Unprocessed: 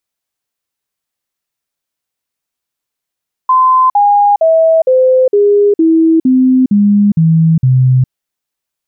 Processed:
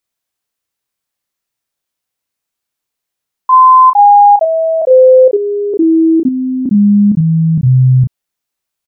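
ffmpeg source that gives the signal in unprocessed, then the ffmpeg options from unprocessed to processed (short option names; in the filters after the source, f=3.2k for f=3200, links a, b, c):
-f lavfi -i "aevalsrc='0.562*clip(min(mod(t,0.46),0.41-mod(t,0.46))/0.005,0,1)*sin(2*PI*1030*pow(2,-floor(t/0.46)/3)*mod(t,0.46))':d=4.6:s=44100"
-filter_complex "[0:a]asplit=2[a][b];[b]adelay=33,volume=-5dB[c];[a][c]amix=inputs=2:normalize=0"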